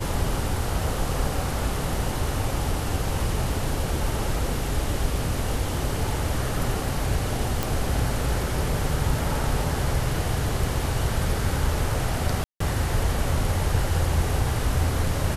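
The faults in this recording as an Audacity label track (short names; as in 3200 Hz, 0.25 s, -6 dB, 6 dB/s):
7.630000	7.630000	pop
12.440000	12.600000	gap 0.164 s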